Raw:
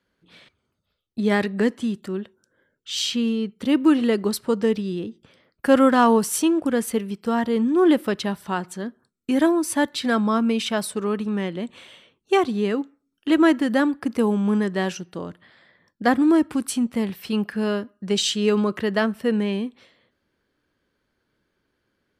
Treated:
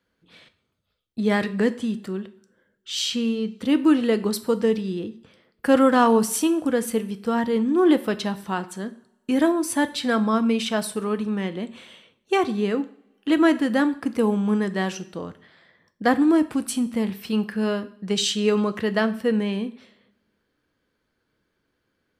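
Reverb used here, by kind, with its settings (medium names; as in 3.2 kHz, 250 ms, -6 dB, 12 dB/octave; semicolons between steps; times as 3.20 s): two-slope reverb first 0.47 s, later 1.6 s, from -22 dB, DRR 10.5 dB; trim -1 dB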